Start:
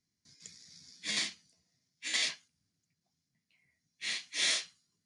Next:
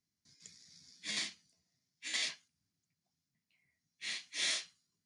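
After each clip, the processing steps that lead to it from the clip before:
notch filter 490 Hz, Q 16
level −4.5 dB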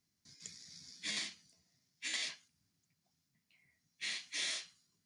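downward compressor 3 to 1, threshold −44 dBFS, peak gain reduction 10.5 dB
level +5.5 dB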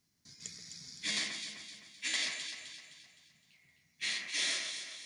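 delay that swaps between a low-pass and a high-pass 129 ms, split 2,300 Hz, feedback 66%, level −4 dB
level +4.5 dB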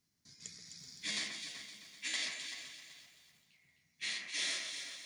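feedback echo at a low word length 380 ms, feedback 35%, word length 9 bits, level −12 dB
level −3.5 dB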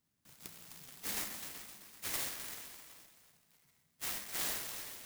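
converter with an unsteady clock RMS 0.12 ms

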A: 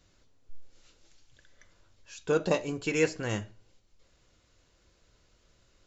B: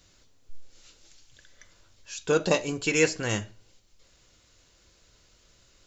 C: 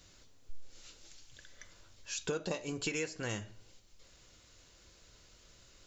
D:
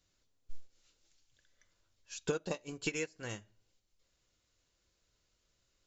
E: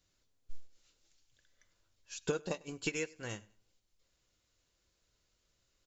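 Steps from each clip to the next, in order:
high-shelf EQ 2,600 Hz +8 dB; level +2.5 dB
downward compressor 12 to 1, threshold −33 dBFS, peak gain reduction 17.5 dB
expander for the loud parts 2.5 to 1, over −45 dBFS; level +3.5 dB
repeating echo 99 ms, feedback 31%, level −24 dB

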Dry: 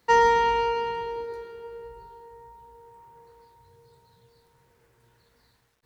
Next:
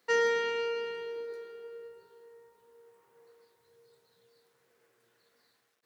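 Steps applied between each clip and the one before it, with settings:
high-pass filter 300 Hz 12 dB per octave
notch filter 920 Hz, Q 6.7
level −4 dB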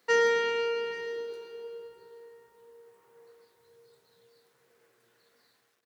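single-tap delay 828 ms −19 dB
level +3 dB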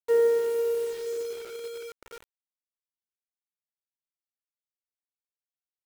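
band-pass filter sweep 420 Hz → 5,900 Hz, 0:02.00–0:03.96
bit reduction 8 bits
level +5 dB

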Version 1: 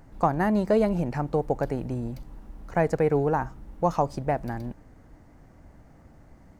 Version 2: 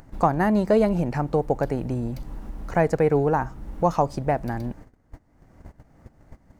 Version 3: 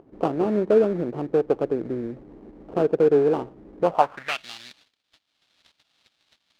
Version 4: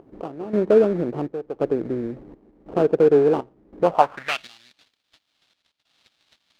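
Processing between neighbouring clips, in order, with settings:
noise gate −46 dBFS, range −26 dB; in parallel at +1.5 dB: upward compression, threshold −24 dBFS; on the sum: level −4 dB
sample-rate reduction 2,000 Hz, jitter 20%; band-pass filter sweep 390 Hz → 3,800 Hz, 0:03.82–0:04.46; level +6 dB
gate pattern "xx...xxxxx" 141 BPM −12 dB; level +2.5 dB

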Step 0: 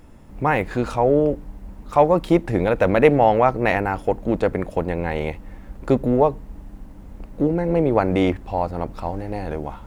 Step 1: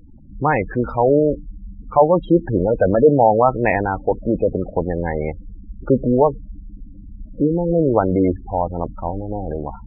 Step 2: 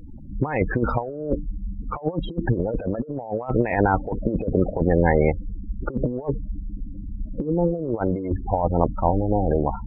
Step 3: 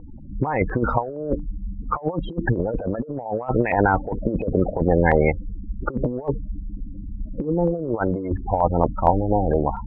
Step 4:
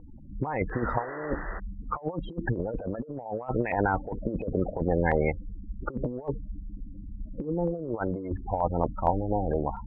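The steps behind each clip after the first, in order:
gate on every frequency bin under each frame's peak −15 dB strong; level +2.5 dB
compressor whose output falls as the input rises −21 dBFS, ratio −0.5
auto-filter low-pass saw up 4.3 Hz 860–3,000 Hz
sound drawn into the spectrogram noise, 0:00.72–0:01.60, 310–2,000 Hz −32 dBFS; level −7.5 dB

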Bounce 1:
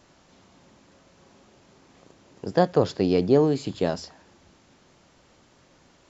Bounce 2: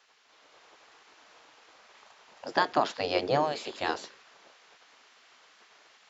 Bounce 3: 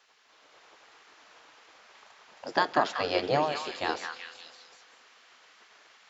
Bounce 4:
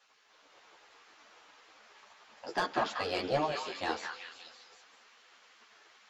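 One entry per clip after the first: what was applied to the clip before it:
gate on every frequency bin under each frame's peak −10 dB weak; three-way crossover with the lows and the highs turned down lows −20 dB, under 200 Hz, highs −12 dB, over 5,400 Hz; automatic gain control gain up to 5.5 dB
echo through a band-pass that steps 189 ms, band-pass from 1,500 Hz, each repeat 0.7 octaves, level −3 dB; on a send at −23 dB: convolution reverb RT60 2.4 s, pre-delay 89 ms
soft clipping −18.5 dBFS, distortion −14 dB; string-ensemble chorus

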